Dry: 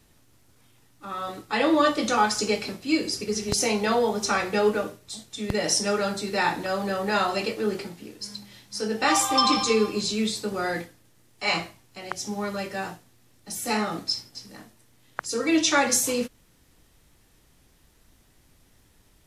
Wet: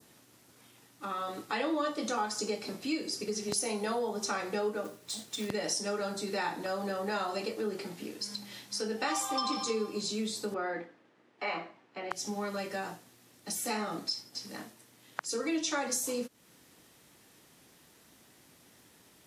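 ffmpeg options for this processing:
-filter_complex "[0:a]asettb=1/sr,asplit=3[a][b][c];[a]atrim=end=3.564[d];[b]atrim=start=3.56:end=4,asetpts=PTS-STARTPTS,afade=t=in:d=0.004:c=qsin,afade=t=out:st=0.436:d=0.004:c=qsin,equalizer=f=10k:w=7.2:g=12.5[e];[c]atrim=start=3.996[f];[d][e]acrossfade=d=0.004:c1=hsin:c2=qsin[g];[g][f]acrossfade=d=0.004:c1=qsin:c2=hsin,asettb=1/sr,asplit=3[h][i][j];[h]atrim=end=4.844[k];[i]atrim=start=4.84:end=5.49,asetpts=PTS-STARTPTS,afade=t=in:d=0.004:c=qsin,afade=t=out:st=0.646:d=0.004:c=qsin,acrusher=bits=3:mode=log:mix=0:aa=0.000001[l];[j]atrim=start=5.486[m];[k][l]acrossfade=d=0.004:c1=hsin:c2=qsin[n];[n][m]acrossfade=d=0.004:c1=qsin:c2=hsin,asettb=1/sr,asplit=3[o][p][q];[o]atrim=end=10.544[r];[p]atrim=start=10.54:end=12.11,asetpts=PTS-STARTPTS,afade=t=in:d=0.004:c=qsin,afade=t=out:st=1.566:d=0.004:c=qsin,highpass=230,lowpass=2.1k[s];[q]atrim=start=12.106[t];[r][s]acrossfade=d=0.004:c1=hsin:c2=qsin[u];[u][t]acrossfade=d=0.004:c1=qsin:c2=hsin,highpass=180,adynamicequalizer=threshold=0.00891:dfrequency=2500:dqfactor=1:tfrequency=2500:tqfactor=1:attack=5:release=100:ratio=0.375:range=3.5:mode=cutabove:tftype=bell,acompressor=threshold=-39dB:ratio=2.5,volume=3dB"

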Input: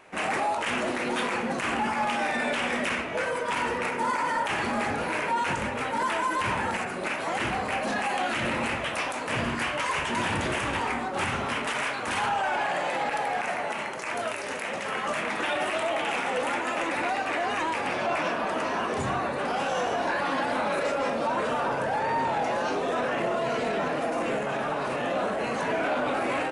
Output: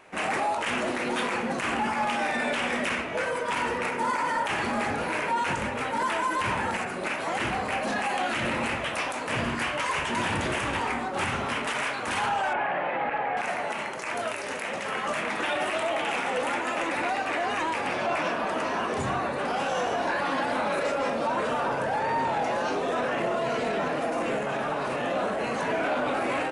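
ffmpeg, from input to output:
-filter_complex "[0:a]asettb=1/sr,asplit=3[a][b][c];[a]atrim=end=12.534[d];[b]atrim=start=12.53:end=13.37,asetpts=PTS-STARTPTS,afade=t=in:d=0.004:c=qsin,afade=t=out:st=0.836:d=0.004:c=qsin,lowpass=f=2.6k:w=0.5412,lowpass=f=2.6k:w=1.3066[e];[c]atrim=start=13.366[f];[d][e]acrossfade=d=0.004:c1=hsin:c2=qsin[g];[g][f]acrossfade=d=0.004:c1=qsin:c2=hsin"

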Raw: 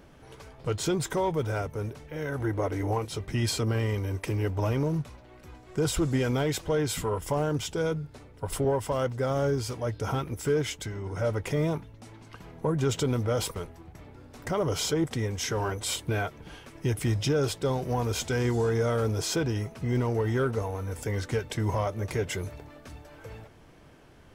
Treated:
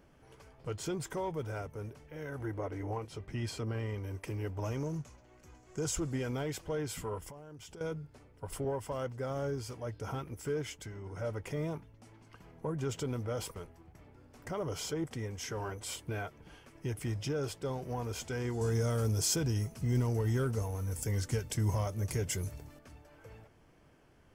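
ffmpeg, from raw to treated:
-filter_complex "[0:a]asettb=1/sr,asplit=3[a][b][c];[a]atrim=end=2.584[d];[b]atrim=start=2.58:end=4.04,asetpts=PTS-STARTPTS,afade=t=in:d=0.004:c=qsin,afade=t=out:st=1.456:d=0.004:c=qsin,highshelf=f=6.4k:g=-8.5[e];[c]atrim=start=4.036[f];[d][e]acrossfade=d=0.004:c1=hsin:c2=qsin[g];[g][f]acrossfade=d=0.004:c1=qsin:c2=hsin,asettb=1/sr,asplit=3[h][i][j];[h]atrim=end=4.644[k];[i]atrim=start=4.64:end=6,asetpts=PTS-STARTPTS,afade=t=in:d=0.004:c=qsin,afade=t=out:st=1.356:d=0.004:c=qsin,equalizer=f=6.6k:w=2.6:g=12[l];[j]atrim=start=5.996[m];[k][l]acrossfade=d=0.004:c1=hsin:c2=qsin[n];[n][m]acrossfade=d=0.004:c1=qsin:c2=hsin,asettb=1/sr,asplit=3[o][p][q];[o]atrim=end=7.284[r];[p]atrim=start=7.28:end=7.81,asetpts=PTS-STARTPTS,afade=t=in:d=0.004:c=qsin,afade=t=out:st=0.526:d=0.004:c=qsin,acompressor=threshold=-36dB:ratio=16:attack=3.2:release=140:knee=1:detection=peak[s];[q]atrim=start=7.806[t];[r][s]acrossfade=d=0.004:c1=hsin:c2=qsin[u];[u][t]acrossfade=d=0.004:c1=qsin:c2=hsin,asettb=1/sr,asplit=3[v][w][x];[v]atrim=end=18.614[y];[w]atrim=start=18.61:end=22.79,asetpts=PTS-STARTPTS,afade=t=in:d=0.004:c=qsin,afade=t=out:st=4.176:d=0.004:c=qsin,bass=f=250:g=8,treble=f=4k:g=13[z];[x]atrim=start=22.786[aa];[y][z]acrossfade=d=0.004:c1=hsin:c2=qsin[ab];[ab][aa]acrossfade=d=0.004:c1=qsin:c2=hsin,equalizer=f=3.8k:t=o:w=0.21:g=-7.5,volume=-9dB"

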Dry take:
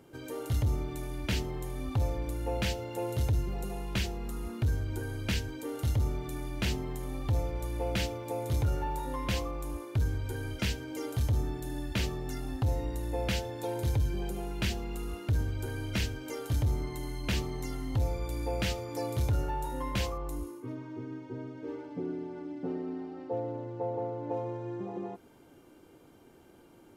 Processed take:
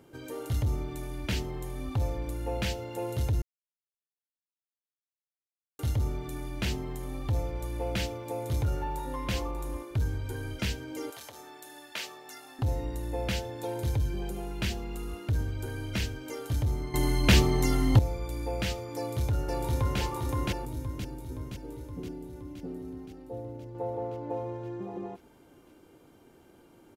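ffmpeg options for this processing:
-filter_complex "[0:a]asplit=2[a][b];[b]afade=t=in:st=8.72:d=0.01,afade=t=out:st=9.23:d=0.01,aecho=0:1:590|1180:0.316228|0.0474342[c];[a][c]amix=inputs=2:normalize=0,asettb=1/sr,asplit=3[d][e][f];[d]atrim=end=11.104[g];[e]atrim=start=11.1:end=12.59,asetpts=PTS-STARTPTS,afade=t=in:d=0.004:c=qsin,afade=t=out:st=1.486:d=0.004:c=qsin,highpass=710[h];[f]atrim=start=12.586[i];[g][h]acrossfade=d=0.004:c1=hsin:c2=qsin[j];[j][i]acrossfade=d=0.004:c1=qsin:c2=hsin,asplit=2[k][l];[l]afade=t=in:st=18.96:d=0.01,afade=t=out:st=20:d=0.01,aecho=0:1:520|1040|1560|2080|2600|3120|3640|4160|4680|5200|5720:1|0.65|0.4225|0.274625|0.178506|0.116029|0.0754189|0.0490223|0.0318645|0.0207119|0.0134627[m];[k][m]amix=inputs=2:normalize=0,asettb=1/sr,asplit=3[n][o][p];[n]atrim=end=20.654[q];[o]atrim=start=20.65:end=23.75,asetpts=PTS-STARTPTS,afade=t=in:d=0.004:c=qsin,afade=t=out:st=3.096:d=0.004:c=qsin,equalizer=f=1.2k:w=0.32:g=-9[r];[p]atrim=start=23.746[s];[q][r]acrossfade=d=0.004:c1=hsin:c2=qsin[t];[t][s]acrossfade=d=0.004:c1=qsin:c2=hsin,asplit=5[u][v][w][x][y];[u]atrim=end=3.42,asetpts=PTS-STARTPTS,afade=t=out:st=3.416:d=0.004:c=hsin[z];[v]atrim=start=3.42:end=5.79,asetpts=PTS-STARTPTS,volume=0[aa];[w]atrim=start=5.79:end=16.942,asetpts=PTS-STARTPTS,afade=t=in:d=0.004:c=hsin[ab];[x]atrim=start=16.938:end=17.992,asetpts=PTS-STARTPTS,volume=11dB[ac];[y]atrim=start=17.988[ad];[z][aa][ab]concat=n=3:v=0:a=1[ae];[ae][ac]acrossfade=d=0.004:c1=hsin:c2=hsin[af];[af][ad]acrossfade=d=0.004:c1=hsin:c2=hsin"

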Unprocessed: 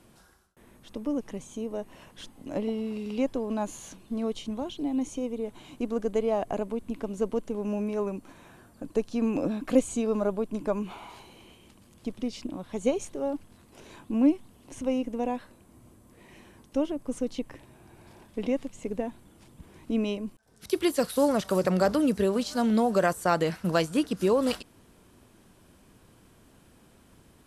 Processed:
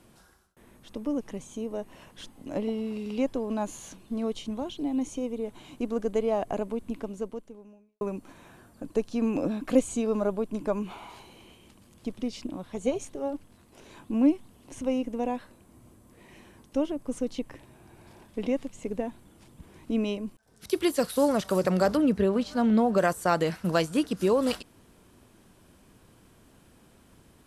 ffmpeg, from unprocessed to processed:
-filter_complex "[0:a]asettb=1/sr,asplit=3[a][b][c];[a]atrim=end=12.694[d];[b]atrim=start=12.69:end=13.96,asetpts=PTS-STARTPTS,afade=t=in:d=0.004:c=qsin,afade=t=out:st=1.266:d=0.004:c=qsin,tremolo=f=270:d=0.4[e];[c]atrim=start=13.956[f];[d][e]acrossfade=d=0.004:c1=hsin:c2=qsin[g];[g][f]acrossfade=d=0.004:c1=qsin:c2=hsin,asettb=1/sr,asplit=3[h][i][j];[h]atrim=end=21.974[k];[i]atrim=start=21.97:end=22.98,asetpts=PTS-STARTPTS,afade=t=in:d=0.004:c=qsin,afade=t=out:st=1.006:d=0.004:c=qsin,bass=f=250:g=3,treble=f=4k:g=-11[l];[j]atrim=start=22.976[m];[k][l]acrossfade=d=0.004:c1=hsin:c2=qsin[n];[n][m]acrossfade=d=0.004:c1=qsin:c2=hsin,asplit=2[o][p];[o]atrim=end=8.01,asetpts=PTS-STARTPTS,afade=t=out:st=6.94:d=1.07:c=qua[q];[p]atrim=start=8.01,asetpts=PTS-STARTPTS,afade=t=in:d=0.004:c=hsin[r];[q][r]concat=n=2:v=0:a=1"

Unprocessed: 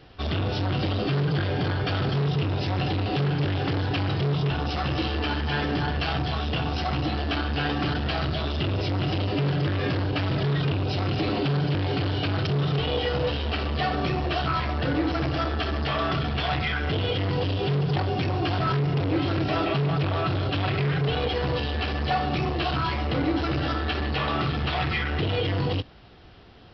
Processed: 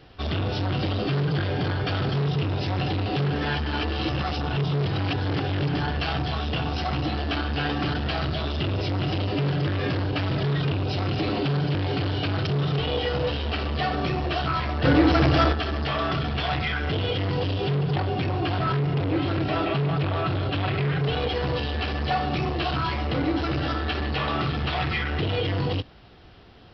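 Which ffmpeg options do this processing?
-filter_complex "[0:a]asettb=1/sr,asplit=3[a][b][c];[a]atrim=end=14.844[d];[b]atrim=start=14.84:end=15.53,asetpts=PTS-STARTPTS,afade=t=in:d=0.004:c=qsin,afade=t=out:st=0.686:d=0.004:c=qsin,acontrast=86[e];[c]atrim=start=15.526[f];[d][e]acrossfade=d=0.004:c1=hsin:c2=qsin[g];[g][f]acrossfade=d=0.004:c1=qsin:c2=hsin,asettb=1/sr,asplit=3[h][i][j];[h]atrim=end=17.704[k];[i]atrim=start=17.7:end=21.01,asetpts=PTS-STARTPTS,afade=t=in:d=0.004:c=qsin,afade=t=out:st=3.306:d=0.004:c=qsin,lowpass=4.5k[l];[j]atrim=start=21.006[m];[k][l]acrossfade=d=0.004:c1=hsin:c2=qsin[n];[n][m]acrossfade=d=0.004:c1=qsin:c2=hsin,asplit=3[o][p][q];[o]atrim=end=3.332[r];[p]atrim=start=3.328:end=5.742,asetpts=PTS-STARTPTS,areverse[s];[q]atrim=start=5.738[t];[r][s]acrossfade=d=0.004:c1=hsin:c2=hsin[u];[u][t]acrossfade=d=0.004:c1=hsin:c2=hsin"

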